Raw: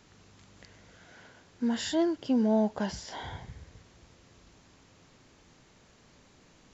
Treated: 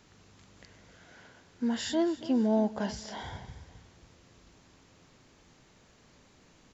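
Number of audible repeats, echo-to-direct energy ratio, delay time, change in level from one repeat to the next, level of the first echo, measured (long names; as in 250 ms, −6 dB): 2, −16.5 dB, 276 ms, −7.5 dB, −17.0 dB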